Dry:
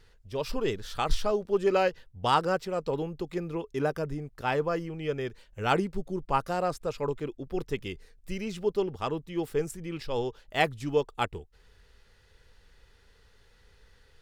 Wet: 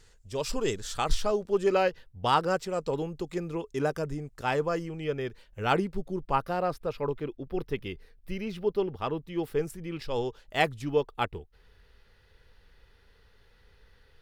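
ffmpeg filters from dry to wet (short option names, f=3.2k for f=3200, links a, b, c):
-af "asetnsamples=n=441:p=0,asendcmd='0.97 equalizer g 5;1.74 equalizer g -3;2.5 equalizer g 6.5;5.04 equalizer g -4.5;6.35 equalizer g -14;9.24 equalizer g -7;10.02 equalizer g 0.5;10.82 equalizer g -10.5',equalizer=f=7.4k:t=o:w=0.73:g=13.5"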